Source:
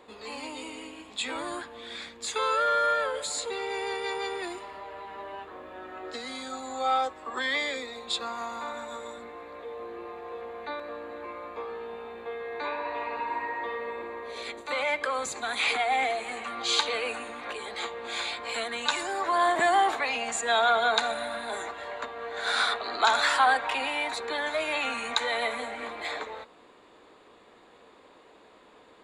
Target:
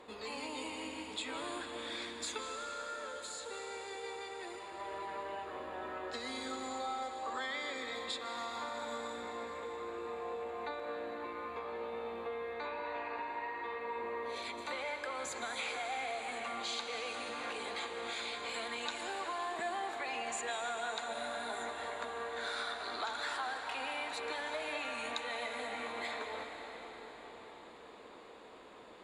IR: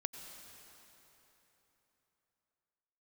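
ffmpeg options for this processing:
-filter_complex "[0:a]acompressor=threshold=-38dB:ratio=5,asettb=1/sr,asplit=3[a][b][c];[a]atrim=end=2.384[d];[b]atrim=start=2.38:end=4.8,asetpts=PTS-STARTPTS,afade=t=in:d=0.004:c=qsin,afade=t=out:st=2.416:d=0.004:c=qsin,flanger=delay=0.7:depth=9.9:regen=-88:speed=1.3:shape=triangular[e];[c]atrim=start=4.796[f];[d][e]acrossfade=d=0.004:c1=hsin:c2=qsin[g];[g][f]acrossfade=d=0.004:c1=qsin:c2=hsin[h];[1:a]atrim=start_sample=2205,asetrate=26901,aresample=44100[i];[h][i]afir=irnorm=-1:irlink=0,volume=-1.5dB"

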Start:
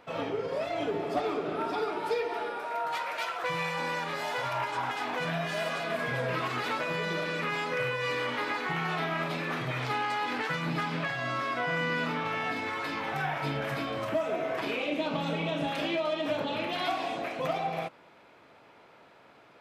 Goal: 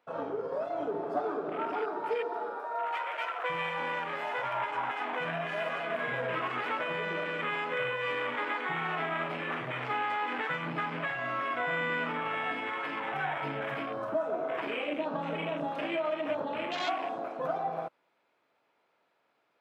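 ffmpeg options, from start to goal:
-af "afwtdn=0.0158,highpass=f=150:p=1,lowshelf=f=240:g=-6.5"

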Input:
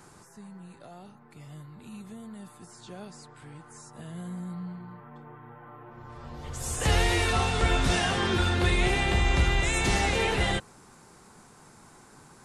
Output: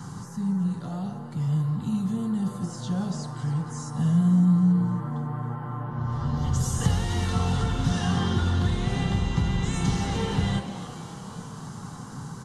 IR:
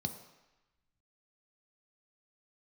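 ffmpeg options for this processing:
-filter_complex "[0:a]acompressor=threshold=-37dB:ratio=6,asplit=8[a][b][c][d][e][f][g][h];[b]adelay=275,afreqshift=140,volume=-13.5dB[i];[c]adelay=550,afreqshift=280,volume=-17.4dB[j];[d]adelay=825,afreqshift=420,volume=-21.3dB[k];[e]adelay=1100,afreqshift=560,volume=-25.1dB[l];[f]adelay=1375,afreqshift=700,volume=-29dB[m];[g]adelay=1650,afreqshift=840,volume=-32.9dB[n];[h]adelay=1925,afreqshift=980,volume=-36.8dB[o];[a][i][j][k][l][m][n][o]amix=inputs=8:normalize=0,asplit=2[p][q];[1:a]atrim=start_sample=2205[r];[q][r]afir=irnorm=-1:irlink=0,volume=-0.5dB[s];[p][s]amix=inputs=2:normalize=0,volume=8dB"

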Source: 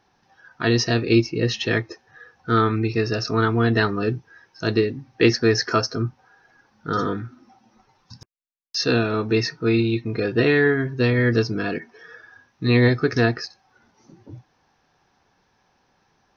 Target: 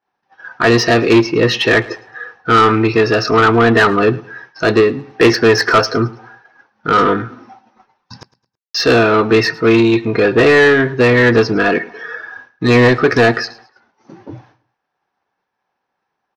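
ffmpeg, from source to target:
-filter_complex "[0:a]agate=range=-33dB:threshold=-49dB:ratio=3:detection=peak,highshelf=f=3.2k:g=-10.5,asplit=2[a][b];[b]highpass=f=720:p=1,volume=21dB,asoftclip=type=tanh:threshold=-5.5dB[c];[a][c]amix=inputs=2:normalize=0,lowpass=f=3.6k:p=1,volume=-6dB,aecho=1:1:108|216|324:0.0891|0.0303|0.0103,volume=4.5dB"

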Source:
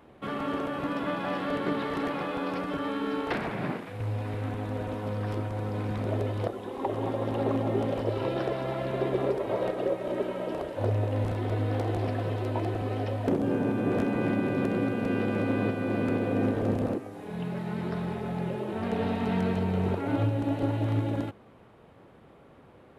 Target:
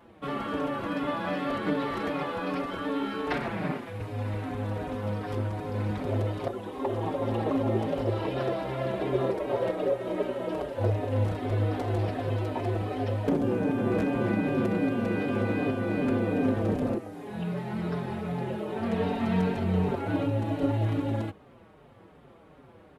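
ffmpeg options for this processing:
-filter_complex "[0:a]asplit=2[a][b];[b]adelay=5.4,afreqshift=-2.6[c];[a][c]amix=inputs=2:normalize=1,volume=3.5dB"

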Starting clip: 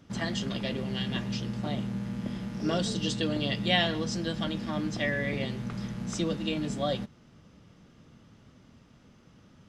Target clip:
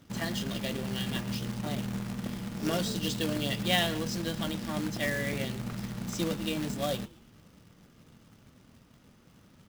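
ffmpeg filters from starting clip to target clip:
-filter_complex "[0:a]acrusher=bits=2:mode=log:mix=0:aa=0.000001,asplit=5[a][b][c][d][e];[b]adelay=112,afreqshift=-120,volume=-22dB[f];[c]adelay=224,afreqshift=-240,volume=-27.8dB[g];[d]adelay=336,afreqshift=-360,volume=-33.7dB[h];[e]adelay=448,afreqshift=-480,volume=-39.5dB[i];[a][f][g][h][i]amix=inputs=5:normalize=0,volume=-2dB"

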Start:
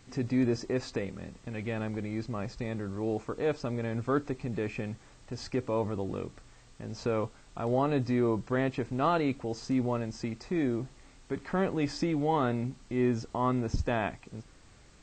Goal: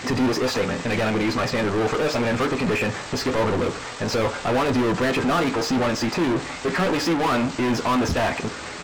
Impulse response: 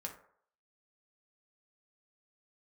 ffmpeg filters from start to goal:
-filter_complex "[0:a]atempo=1.7,asplit=2[a][b];[b]highpass=f=720:p=1,volume=38dB,asoftclip=type=tanh:threshold=-15dB[c];[a][c]amix=inputs=2:normalize=0,lowpass=f=2.9k:p=1,volume=-6dB,asplit=2[d][e];[1:a]atrim=start_sample=2205,adelay=12[f];[e][f]afir=irnorm=-1:irlink=0,volume=-5.5dB[g];[d][g]amix=inputs=2:normalize=0"

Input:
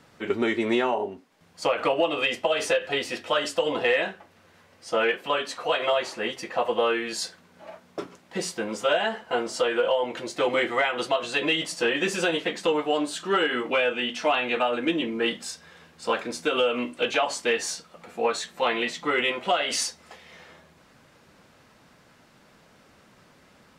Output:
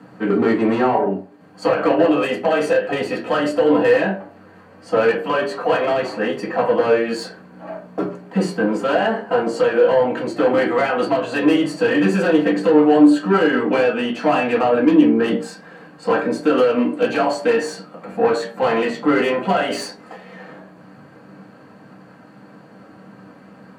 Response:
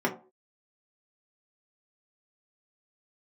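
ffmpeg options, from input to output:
-filter_complex "[0:a]asoftclip=type=tanh:threshold=-23.5dB[a];[1:a]atrim=start_sample=2205,asetrate=34839,aresample=44100[b];[a][b]afir=irnorm=-1:irlink=0,volume=-2.5dB"

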